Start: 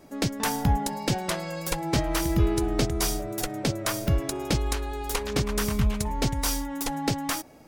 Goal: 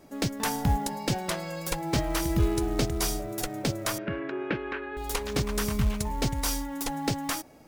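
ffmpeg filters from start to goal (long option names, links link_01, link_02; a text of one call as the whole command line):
ffmpeg -i in.wav -filter_complex "[0:a]acrusher=bits=6:mode=log:mix=0:aa=0.000001,asettb=1/sr,asplit=3[link_01][link_02][link_03];[link_01]atrim=end=3.984[link_04];[link_02]atrim=start=3.98:end=4.97,asetpts=PTS-STARTPTS,afade=type=in:duration=0.004:curve=qsin,afade=type=out:start_time=0.986:duration=0.004:curve=qsin,highpass=210,equalizer=frequency=370:width_type=q:width=4:gain=4,equalizer=frequency=750:width_type=q:width=4:gain=-7,equalizer=frequency=1600:width_type=q:width=4:gain=10,equalizer=frequency=2600:width_type=q:width=4:gain=4,lowpass=frequency=2600:width=0.5412,lowpass=frequency=2600:width=1.3066[link_05];[link_03]atrim=start=4.966[link_06];[link_04][link_05]acrossfade=duration=0.004:curve1=hsin:curve2=qsin[link_07];[link_07][link_06]acrossfade=duration=0.004:curve1=qsin:curve2=hsin,volume=-2dB" out.wav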